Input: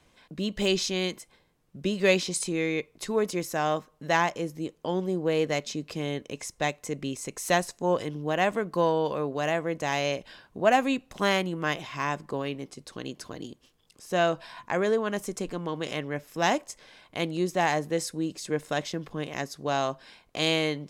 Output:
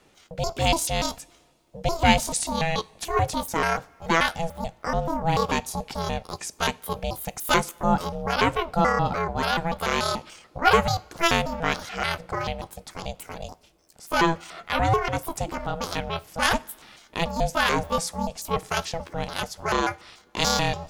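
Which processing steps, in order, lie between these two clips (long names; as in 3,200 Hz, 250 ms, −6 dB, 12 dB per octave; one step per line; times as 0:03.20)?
pitch shifter gated in a rhythm +9 semitones, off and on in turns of 145 ms
ring modulation 330 Hz
coupled-rooms reverb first 0.29 s, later 2 s, from −18 dB, DRR 17.5 dB
level +6.5 dB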